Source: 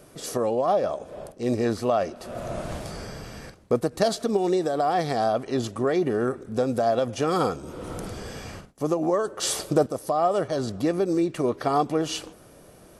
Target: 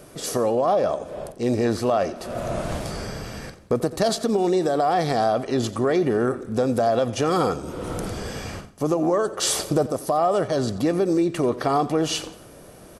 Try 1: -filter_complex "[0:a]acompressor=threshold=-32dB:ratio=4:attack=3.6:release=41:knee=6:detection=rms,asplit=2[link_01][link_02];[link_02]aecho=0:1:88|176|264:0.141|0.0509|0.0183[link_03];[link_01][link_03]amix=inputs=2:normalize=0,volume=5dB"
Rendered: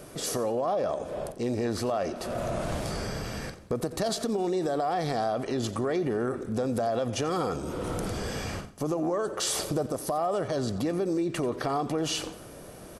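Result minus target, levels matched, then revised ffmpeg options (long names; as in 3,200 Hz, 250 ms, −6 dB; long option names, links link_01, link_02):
downward compressor: peak gain reduction +8 dB
-filter_complex "[0:a]acompressor=threshold=-21dB:ratio=4:attack=3.6:release=41:knee=6:detection=rms,asplit=2[link_01][link_02];[link_02]aecho=0:1:88|176|264:0.141|0.0509|0.0183[link_03];[link_01][link_03]amix=inputs=2:normalize=0,volume=5dB"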